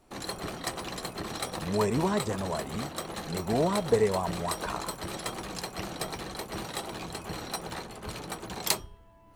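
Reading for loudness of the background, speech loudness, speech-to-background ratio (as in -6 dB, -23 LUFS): -36.0 LUFS, -30.5 LUFS, 5.5 dB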